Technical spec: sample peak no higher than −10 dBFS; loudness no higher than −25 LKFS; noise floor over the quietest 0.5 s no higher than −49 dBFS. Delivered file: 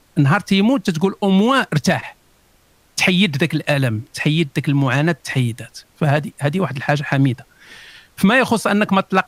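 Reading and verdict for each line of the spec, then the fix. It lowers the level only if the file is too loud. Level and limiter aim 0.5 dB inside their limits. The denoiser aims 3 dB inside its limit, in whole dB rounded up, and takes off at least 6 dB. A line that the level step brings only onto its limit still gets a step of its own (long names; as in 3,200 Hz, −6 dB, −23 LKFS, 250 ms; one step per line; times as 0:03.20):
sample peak −2.5 dBFS: out of spec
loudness −17.5 LKFS: out of spec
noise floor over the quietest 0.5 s −55 dBFS: in spec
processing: level −8 dB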